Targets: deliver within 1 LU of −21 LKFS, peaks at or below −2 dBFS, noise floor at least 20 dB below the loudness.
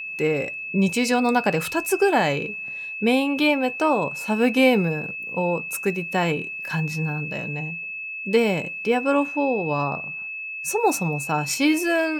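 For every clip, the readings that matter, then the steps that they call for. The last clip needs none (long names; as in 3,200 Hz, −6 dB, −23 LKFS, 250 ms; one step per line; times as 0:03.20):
interfering tone 2,600 Hz; level of the tone −30 dBFS; integrated loudness −23.0 LKFS; sample peak −5.5 dBFS; target loudness −21.0 LKFS
→ notch filter 2,600 Hz, Q 30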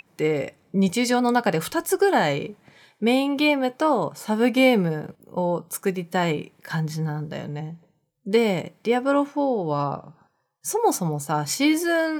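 interfering tone none found; integrated loudness −23.0 LKFS; sample peak −6.0 dBFS; target loudness −21.0 LKFS
→ level +2 dB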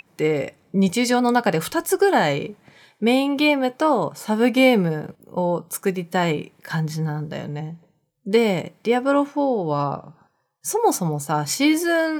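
integrated loudness −21.0 LKFS; sample peak −4.0 dBFS; background noise floor −67 dBFS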